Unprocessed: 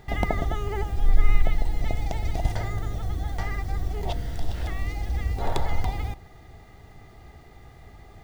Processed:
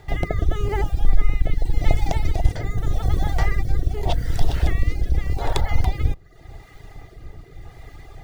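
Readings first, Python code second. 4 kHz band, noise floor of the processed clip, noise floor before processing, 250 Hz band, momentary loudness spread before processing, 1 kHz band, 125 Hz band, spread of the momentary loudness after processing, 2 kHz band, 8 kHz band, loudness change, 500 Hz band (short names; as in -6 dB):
+5.0 dB, -47 dBFS, -49 dBFS, +4.0 dB, 23 LU, +2.5 dB, +6.0 dB, 20 LU, +3.0 dB, n/a, +5.0 dB, +4.0 dB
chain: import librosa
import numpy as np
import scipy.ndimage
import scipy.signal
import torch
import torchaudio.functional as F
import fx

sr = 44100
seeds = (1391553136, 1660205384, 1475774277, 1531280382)

y = fx.octave_divider(x, sr, octaves=2, level_db=2.0)
y = fx.dereverb_blind(y, sr, rt60_s=0.75)
y = fx.peak_eq(y, sr, hz=220.0, db=-12.5, octaves=0.34)
y = fx.rider(y, sr, range_db=10, speed_s=0.5)
y = fx.rotary(y, sr, hz=0.85)
y = F.gain(torch.from_numpy(y), 7.5).numpy()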